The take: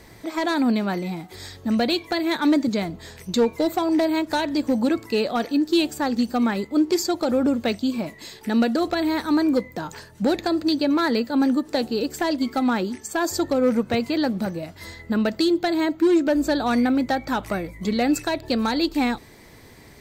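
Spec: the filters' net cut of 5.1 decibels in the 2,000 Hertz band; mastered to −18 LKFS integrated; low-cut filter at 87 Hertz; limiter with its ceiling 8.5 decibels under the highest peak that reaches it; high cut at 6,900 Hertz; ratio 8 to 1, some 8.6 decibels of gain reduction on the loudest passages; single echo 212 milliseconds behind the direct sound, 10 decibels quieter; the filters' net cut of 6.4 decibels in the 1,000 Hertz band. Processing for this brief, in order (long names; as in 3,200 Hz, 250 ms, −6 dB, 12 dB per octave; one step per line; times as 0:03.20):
high-pass filter 87 Hz
low-pass filter 6,900 Hz
parametric band 1,000 Hz −8.5 dB
parametric band 2,000 Hz −3.5 dB
downward compressor 8 to 1, threshold −25 dBFS
brickwall limiter −24.5 dBFS
single-tap delay 212 ms −10 dB
level +14 dB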